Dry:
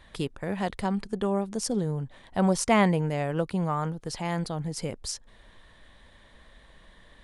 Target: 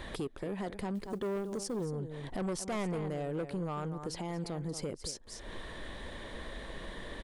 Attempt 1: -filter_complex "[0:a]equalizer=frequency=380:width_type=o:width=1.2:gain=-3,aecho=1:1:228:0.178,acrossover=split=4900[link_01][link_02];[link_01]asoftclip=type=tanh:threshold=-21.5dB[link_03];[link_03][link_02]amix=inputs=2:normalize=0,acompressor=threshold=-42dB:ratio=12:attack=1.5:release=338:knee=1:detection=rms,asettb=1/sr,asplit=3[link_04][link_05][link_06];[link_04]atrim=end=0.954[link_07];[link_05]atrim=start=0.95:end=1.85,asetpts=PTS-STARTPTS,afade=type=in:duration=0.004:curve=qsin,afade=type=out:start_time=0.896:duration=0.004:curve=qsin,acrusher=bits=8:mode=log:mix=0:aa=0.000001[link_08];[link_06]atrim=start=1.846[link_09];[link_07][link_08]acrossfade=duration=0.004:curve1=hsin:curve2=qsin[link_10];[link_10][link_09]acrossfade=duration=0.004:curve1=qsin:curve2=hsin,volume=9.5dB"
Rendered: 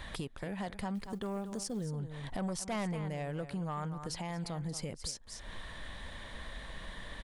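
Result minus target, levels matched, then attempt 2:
500 Hz band −3.5 dB
-filter_complex "[0:a]equalizer=frequency=380:width_type=o:width=1.2:gain=8.5,aecho=1:1:228:0.178,acrossover=split=4900[link_01][link_02];[link_01]asoftclip=type=tanh:threshold=-21.5dB[link_03];[link_03][link_02]amix=inputs=2:normalize=0,acompressor=threshold=-42dB:ratio=12:attack=1.5:release=338:knee=1:detection=rms,asettb=1/sr,asplit=3[link_04][link_05][link_06];[link_04]atrim=end=0.954[link_07];[link_05]atrim=start=0.95:end=1.85,asetpts=PTS-STARTPTS,afade=type=in:duration=0.004:curve=qsin,afade=type=out:start_time=0.896:duration=0.004:curve=qsin,acrusher=bits=8:mode=log:mix=0:aa=0.000001[link_08];[link_06]atrim=start=1.846[link_09];[link_07][link_08]acrossfade=duration=0.004:curve1=hsin:curve2=qsin[link_10];[link_10][link_09]acrossfade=duration=0.004:curve1=qsin:curve2=hsin,volume=9.5dB"

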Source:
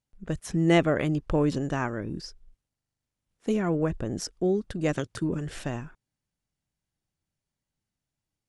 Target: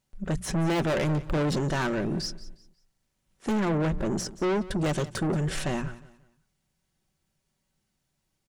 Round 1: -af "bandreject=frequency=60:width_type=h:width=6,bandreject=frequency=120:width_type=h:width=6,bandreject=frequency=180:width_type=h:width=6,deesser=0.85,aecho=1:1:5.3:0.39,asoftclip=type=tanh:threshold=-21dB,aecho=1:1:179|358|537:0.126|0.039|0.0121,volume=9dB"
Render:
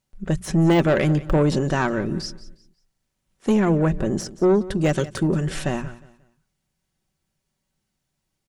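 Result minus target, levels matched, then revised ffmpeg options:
soft clipping: distortion −7 dB
-af "bandreject=frequency=60:width_type=h:width=6,bandreject=frequency=120:width_type=h:width=6,bandreject=frequency=180:width_type=h:width=6,deesser=0.85,aecho=1:1:5.3:0.39,asoftclip=type=tanh:threshold=-32.5dB,aecho=1:1:179|358|537:0.126|0.039|0.0121,volume=9dB"

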